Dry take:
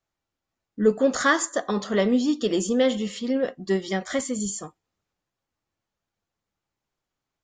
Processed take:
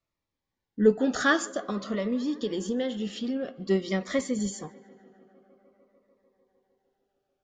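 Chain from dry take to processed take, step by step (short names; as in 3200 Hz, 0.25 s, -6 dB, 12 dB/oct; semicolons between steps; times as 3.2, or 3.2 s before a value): LPF 5000 Hz 12 dB/oct; 1.4–3.54 compressor 3:1, threshold -27 dBFS, peak gain reduction 8.5 dB; tape echo 0.15 s, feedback 89%, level -23 dB, low-pass 3700 Hz; cascading phaser falling 0.5 Hz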